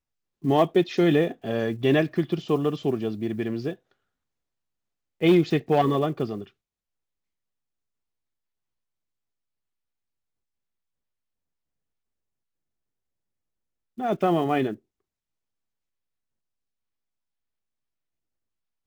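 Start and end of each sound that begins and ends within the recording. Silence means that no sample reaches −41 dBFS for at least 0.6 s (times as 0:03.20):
0:05.21–0:06.47
0:13.98–0:14.76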